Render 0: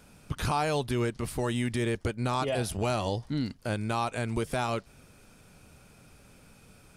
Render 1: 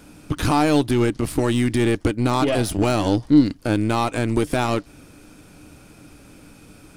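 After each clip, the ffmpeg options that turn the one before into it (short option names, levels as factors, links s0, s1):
-af "aeval=exprs='0.15*(cos(1*acos(clip(val(0)/0.15,-1,1)))-cos(1*PI/2))+0.00944*(cos(8*acos(clip(val(0)/0.15,-1,1)))-cos(8*PI/2))':c=same,equalizer=f=300:w=5:g=14.5,volume=2.37"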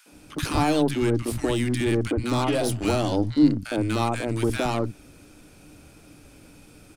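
-filter_complex "[0:a]acrossover=split=200|1200[s0][s1][s2];[s1]adelay=60[s3];[s0]adelay=120[s4];[s4][s3][s2]amix=inputs=3:normalize=0,volume=0.75"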